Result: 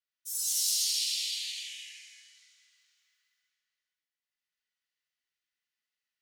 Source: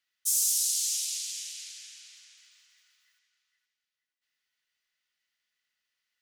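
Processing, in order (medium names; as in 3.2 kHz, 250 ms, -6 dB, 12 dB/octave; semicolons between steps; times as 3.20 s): short-mantissa float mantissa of 4-bit; spectral noise reduction 15 dB; gated-style reverb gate 400 ms flat, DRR -6.5 dB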